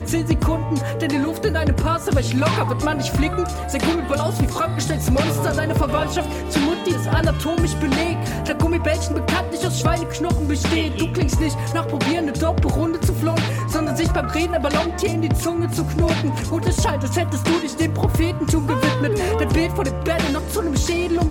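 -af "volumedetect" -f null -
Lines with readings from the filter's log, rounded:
mean_volume: -19.8 dB
max_volume: -6.6 dB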